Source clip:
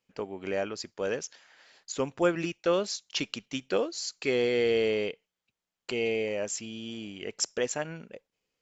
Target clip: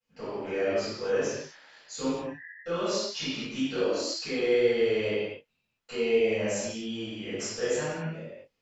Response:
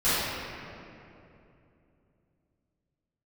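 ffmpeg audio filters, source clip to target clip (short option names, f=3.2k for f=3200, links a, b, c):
-filter_complex "[0:a]alimiter=limit=-22dB:level=0:latency=1:release=31,flanger=delay=18:depth=4.3:speed=1.9,asplit=3[a][b][c];[a]afade=t=out:st=2.16:d=0.02[d];[b]asuperpass=centerf=1800:order=20:qfactor=4.6,afade=t=in:st=2.16:d=0.02,afade=t=out:st=2.65:d=0.02[e];[c]afade=t=in:st=2.65:d=0.02[f];[d][e][f]amix=inputs=3:normalize=0[g];[1:a]atrim=start_sample=2205,afade=t=out:st=0.33:d=0.01,atrim=end_sample=14994[h];[g][h]afir=irnorm=-1:irlink=0,volume=-8dB"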